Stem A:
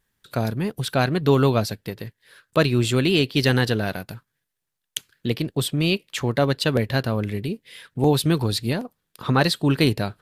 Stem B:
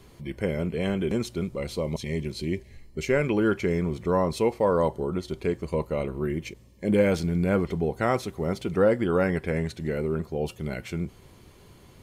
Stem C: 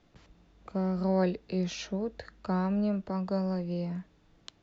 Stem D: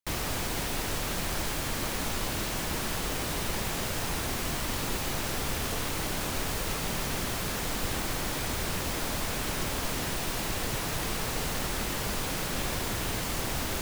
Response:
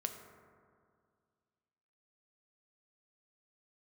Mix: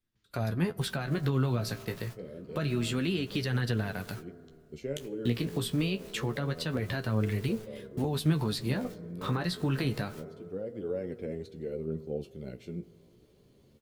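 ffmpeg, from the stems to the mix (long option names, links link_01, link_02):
-filter_complex "[0:a]adynamicequalizer=threshold=0.0112:dfrequency=1500:dqfactor=0.96:tfrequency=1500:tqfactor=0.96:attack=5:release=100:ratio=0.375:range=2.5:mode=boostabove:tftype=bell,volume=-0.5dB,asplit=3[link_01][link_02][link_03];[link_02]volume=-16.5dB[link_04];[1:a]equalizer=frequency=125:width_type=o:width=1:gain=4,equalizer=frequency=250:width_type=o:width=1:gain=6,equalizer=frequency=500:width_type=o:width=1:gain=10,equalizer=frequency=1000:width_type=o:width=1:gain=-7,equalizer=frequency=2000:width_type=o:width=1:gain=-4,equalizer=frequency=4000:width_type=o:width=1:gain=5,equalizer=frequency=8000:width_type=o:width=1:gain=-3,adelay=1750,volume=-14dB,asplit=2[link_05][link_06];[link_06]volume=-10.5dB[link_07];[2:a]equalizer=frequency=700:width_type=o:width=1.7:gain=-14.5,volume=-17dB,asplit=2[link_08][link_09];[link_09]volume=-9dB[link_10];[3:a]alimiter=level_in=3.5dB:limit=-24dB:level=0:latency=1:release=34,volume=-3.5dB,acrusher=bits=7:dc=4:mix=0:aa=0.000001,adelay=750,volume=-11.5dB[link_11];[link_03]apad=whole_len=607271[link_12];[link_05][link_12]sidechaincompress=threshold=-40dB:ratio=8:attack=44:release=733[link_13];[link_01][link_11]amix=inputs=2:normalize=0,agate=range=-27dB:threshold=-38dB:ratio=16:detection=peak,alimiter=limit=-16dB:level=0:latency=1:release=94,volume=0dB[link_14];[4:a]atrim=start_sample=2205[link_15];[link_04][link_07][link_10]amix=inputs=3:normalize=0[link_16];[link_16][link_15]afir=irnorm=-1:irlink=0[link_17];[link_13][link_08][link_14][link_17]amix=inputs=4:normalize=0,acrossover=split=280[link_18][link_19];[link_19]acompressor=threshold=-29dB:ratio=6[link_20];[link_18][link_20]amix=inputs=2:normalize=0,flanger=delay=8.1:depth=9.9:regen=34:speed=0.27:shape=triangular"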